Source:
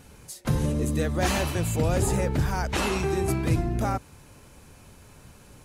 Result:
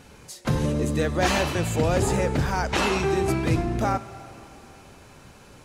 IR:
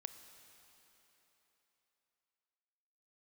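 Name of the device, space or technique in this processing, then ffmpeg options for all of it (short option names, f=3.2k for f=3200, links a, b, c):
filtered reverb send: -filter_complex "[0:a]asplit=2[a][b];[b]highpass=f=240:p=1,lowpass=7.5k[c];[1:a]atrim=start_sample=2205[d];[c][d]afir=irnorm=-1:irlink=0,volume=6dB[e];[a][e]amix=inputs=2:normalize=0,volume=-2.5dB"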